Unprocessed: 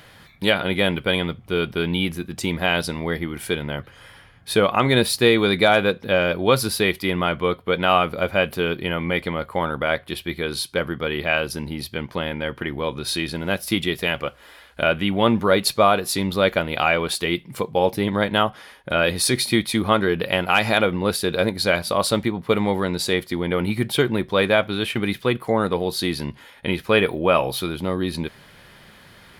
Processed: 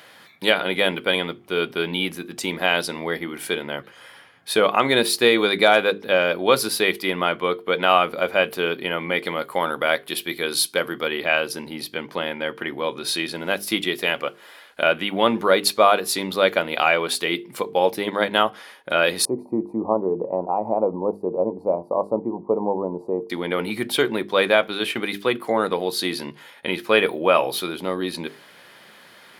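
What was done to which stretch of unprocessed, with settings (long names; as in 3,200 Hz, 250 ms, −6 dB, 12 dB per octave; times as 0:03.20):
0:09.25–0:11.08: high-shelf EQ 5,000 Hz +9.5 dB
0:19.25–0:23.30: elliptic low-pass filter 980 Hz
whole clip: high-pass filter 270 Hz 12 dB per octave; mains-hum notches 50/100/150/200/250/300/350/400/450 Hz; level +1 dB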